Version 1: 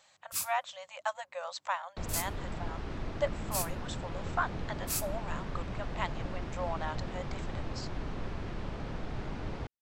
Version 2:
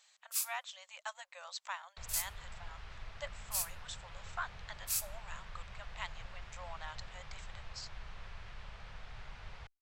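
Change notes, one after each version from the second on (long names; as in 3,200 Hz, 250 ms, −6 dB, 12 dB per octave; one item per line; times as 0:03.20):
first sound: add high-pass filter 380 Hz
second sound: add bass and treble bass −3 dB, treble −6 dB
master: add guitar amp tone stack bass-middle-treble 10-0-10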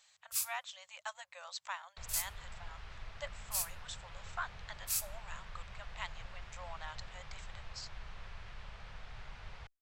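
first sound: remove high-pass filter 380 Hz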